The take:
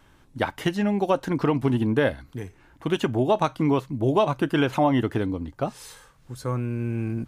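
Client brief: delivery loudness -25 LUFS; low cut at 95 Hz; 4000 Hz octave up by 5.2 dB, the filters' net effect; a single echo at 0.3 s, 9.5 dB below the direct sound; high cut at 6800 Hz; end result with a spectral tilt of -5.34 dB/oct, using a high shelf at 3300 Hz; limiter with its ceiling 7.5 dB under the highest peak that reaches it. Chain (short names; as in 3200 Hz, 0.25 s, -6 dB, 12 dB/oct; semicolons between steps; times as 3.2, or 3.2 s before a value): HPF 95 Hz; LPF 6800 Hz; high shelf 3300 Hz +6.5 dB; bell 4000 Hz +3 dB; limiter -12.5 dBFS; echo 0.3 s -9.5 dB; gain +0.5 dB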